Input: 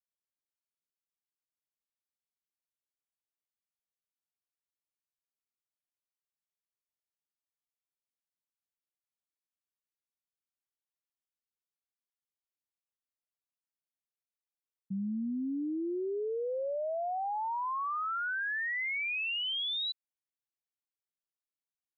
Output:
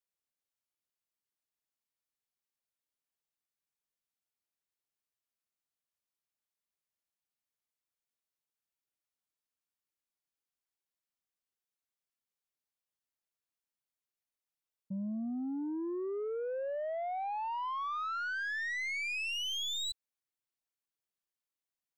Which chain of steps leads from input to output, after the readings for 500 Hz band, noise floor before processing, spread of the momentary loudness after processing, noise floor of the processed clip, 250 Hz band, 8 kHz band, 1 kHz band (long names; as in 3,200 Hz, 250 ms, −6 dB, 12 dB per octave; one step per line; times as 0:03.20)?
−2.5 dB, below −85 dBFS, 4 LU, below −85 dBFS, −2.5 dB, can't be measured, −2.5 dB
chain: stylus tracing distortion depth 0.025 ms
soft clipping −32.5 dBFS, distortion −21 dB